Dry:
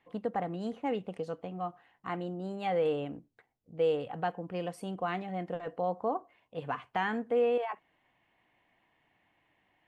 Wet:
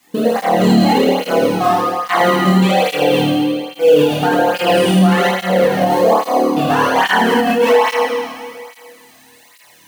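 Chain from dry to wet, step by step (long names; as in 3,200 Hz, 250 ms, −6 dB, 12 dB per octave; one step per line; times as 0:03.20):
mu-law and A-law mismatch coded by A
high-shelf EQ 4,000 Hz +10.5 dB
mains-hum notches 60/120/180 Hz
output level in coarse steps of 20 dB
flutter between parallel walls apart 4.6 metres, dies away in 0.91 s
convolution reverb RT60 2.0 s, pre-delay 8 ms, DRR −5.5 dB
boost into a limiter +25 dB
through-zero flanger with one copy inverted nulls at 1.2 Hz, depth 2.3 ms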